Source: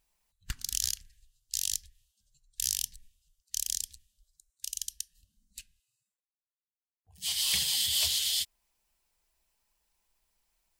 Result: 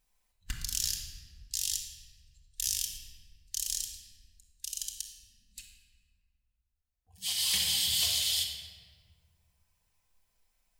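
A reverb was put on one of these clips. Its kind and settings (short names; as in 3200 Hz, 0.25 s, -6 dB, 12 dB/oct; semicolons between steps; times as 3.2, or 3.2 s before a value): shoebox room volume 2000 m³, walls mixed, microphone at 2 m; gain -2.5 dB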